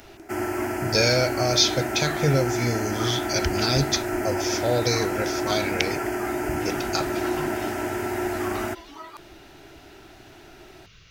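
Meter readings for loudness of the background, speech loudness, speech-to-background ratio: -28.0 LUFS, -25.0 LUFS, 3.0 dB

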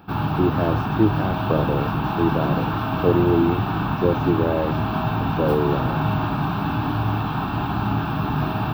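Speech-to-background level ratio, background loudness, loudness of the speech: -0.5 dB, -23.5 LUFS, -24.0 LUFS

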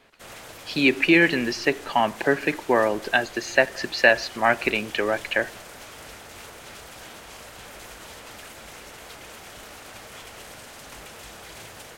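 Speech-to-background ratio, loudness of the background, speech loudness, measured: 19.0 dB, -41.0 LUFS, -22.0 LUFS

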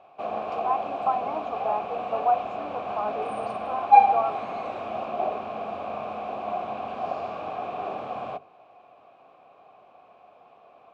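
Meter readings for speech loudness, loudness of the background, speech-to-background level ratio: -31.0 LUFS, -28.0 LUFS, -3.0 dB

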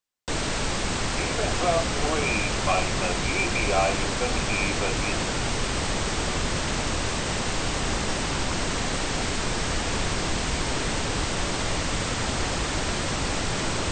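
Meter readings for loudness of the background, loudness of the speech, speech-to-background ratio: -26.5 LUFS, -28.5 LUFS, -2.0 dB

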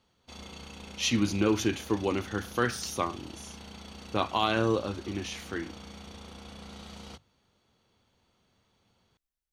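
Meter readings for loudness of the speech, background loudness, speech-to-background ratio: -30.0 LUFS, -45.5 LUFS, 15.5 dB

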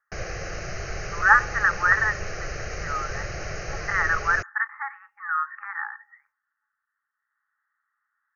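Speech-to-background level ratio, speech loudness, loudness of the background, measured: 10.5 dB, -23.5 LUFS, -34.0 LUFS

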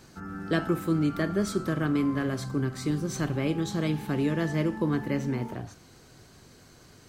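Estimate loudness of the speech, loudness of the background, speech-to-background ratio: -29.0 LUFS, -39.5 LUFS, 10.5 dB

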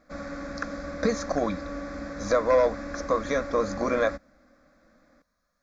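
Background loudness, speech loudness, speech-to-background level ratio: -36.5 LUFS, -26.5 LUFS, 10.0 dB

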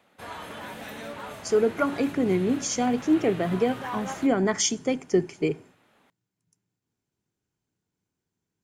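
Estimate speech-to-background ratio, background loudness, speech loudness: 13.5 dB, -39.0 LUFS, -25.5 LUFS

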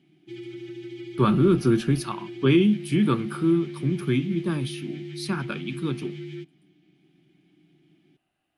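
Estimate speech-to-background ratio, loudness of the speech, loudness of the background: 14.0 dB, -24.0 LUFS, -38.0 LUFS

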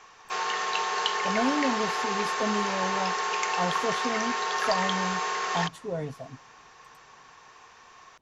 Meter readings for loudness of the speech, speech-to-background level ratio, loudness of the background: -33.0 LUFS, -5.0 dB, -28.0 LUFS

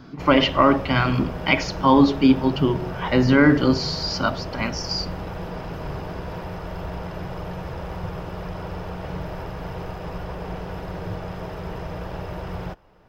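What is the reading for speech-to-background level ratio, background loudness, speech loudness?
13.0 dB, -33.0 LUFS, -20.0 LUFS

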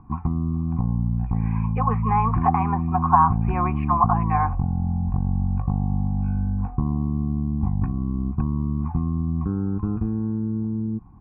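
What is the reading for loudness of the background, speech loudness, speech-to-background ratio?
-25.0 LUFS, -23.0 LUFS, 2.0 dB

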